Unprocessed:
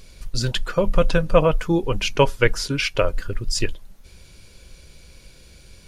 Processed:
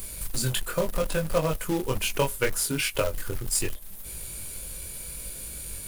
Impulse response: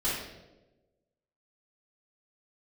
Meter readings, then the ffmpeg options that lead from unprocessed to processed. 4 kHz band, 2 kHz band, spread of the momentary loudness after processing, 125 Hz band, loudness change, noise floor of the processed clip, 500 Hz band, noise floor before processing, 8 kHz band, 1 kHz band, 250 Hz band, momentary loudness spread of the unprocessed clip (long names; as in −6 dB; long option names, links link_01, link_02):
−5.5 dB, −6.0 dB, 10 LU, −7.0 dB, −7.0 dB, −39 dBFS, −7.5 dB, −48 dBFS, +5.0 dB, −7.5 dB, −7.0 dB, 8 LU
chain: -filter_complex "[0:a]acrossover=split=150[link_01][link_02];[link_02]aexciter=amount=11.3:drive=4.4:freq=8000[link_03];[link_01][link_03]amix=inputs=2:normalize=0,equalizer=frequency=610:width_type=o:width=0.27:gain=2,acompressor=threshold=-35dB:ratio=2,flanger=delay=19:depth=4.5:speed=0.73,acrusher=bits=3:mode=log:mix=0:aa=0.000001,volume=7dB"